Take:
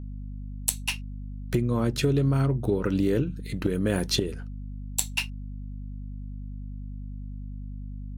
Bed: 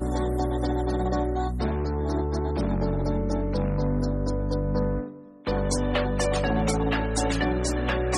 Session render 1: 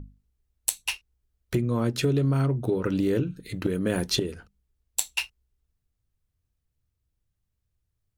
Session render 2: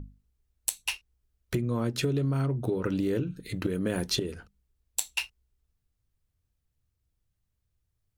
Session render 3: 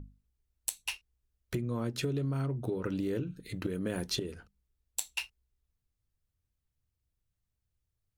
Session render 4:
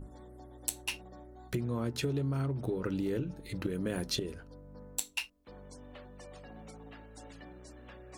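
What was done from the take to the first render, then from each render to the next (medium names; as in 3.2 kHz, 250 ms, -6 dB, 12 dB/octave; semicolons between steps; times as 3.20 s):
hum notches 50/100/150/200/250 Hz
compression 2:1, threshold -27 dBFS, peak gain reduction 5.5 dB
trim -5 dB
add bed -25.5 dB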